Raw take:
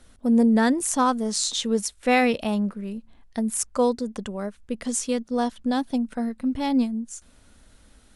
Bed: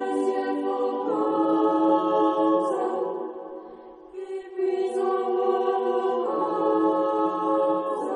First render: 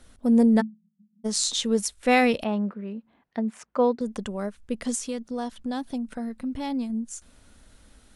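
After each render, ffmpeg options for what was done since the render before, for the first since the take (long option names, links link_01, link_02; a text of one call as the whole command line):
ffmpeg -i in.wav -filter_complex "[0:a]asplit=3[link_01][link_02][link_03];[link_01]afade=type=out:start_time=0.6:duration=0.02[link_04];[link_02]asuperpass=centerf=190:order=20:qfactor=3.8,afade=type=in:start_time=0.6:duration=0.02,afade=type=out:start_time=1.24:duration=0.02[link_05];[link_03]afade=type=in:start_time=1.24:duration=0.02[link_06];[link_04][link_05][link_06]amix=inputs=3:normalize=0,asettb=1/sr,asplit=3[link_07][link_08][link_09];[link_07]atrim=end=2.444[link_10];[link_08]atrim=start=2.44:end=4.01,asetpts=PTS-STARTPTS,afade=type=in:duration=0.004:curve=qsin,afade=type=out:start_time=1.566:duration=0.004:curve=qsin,highpass=190,lowpass=2400[link_11];[link_09]atrim=start=4.006[link_12];[link_10][link_11]acrossfade=duration=0.004:curve1=hsin:curve2=qsin[link_13];[link_13][link_12]acrossfade=duration=0.004:curve1=qsin:curve2=hsin,asettb=1/sr,asplit=3[link_14][link_15][link_16];[link_14]atrim=end=4.954[link_17];[link_15]atrim=start=4.95:end=6.9,asetpts=PTS-STARTPTS,afade=type=in:duration=0.004:curve=qsin,afade=type=out:start_time=1.946:duration=0.004:curve=qsin,acompressor=threshold=-31dB:ratio=2:attack=3.2:release=140:knee=1:detection=peak[link_18];[link_16]atrim=start=6.896[link_19];[link_17][link_18]acrossfade=duration=0.004:curve1=hsin:curve2=qsin[link_20];[link_20][link_19]acrossfade=duration=0.004:curve1=qsin:curve2=hsin" out.wav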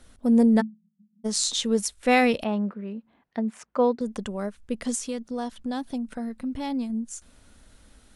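ffmpeg -i in.wav -af anull out.wav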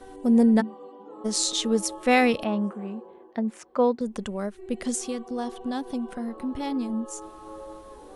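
ffmpeg -i in.wav -i bed.wav -filter_complex "[1:a]volume=-18.5dB[link_01];[0:a][link_01]amix=inputs=2:normalize=0" out.wav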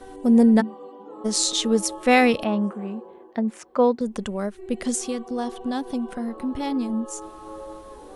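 ffmpeg -i in.wav -af "volume=3dB" out.wav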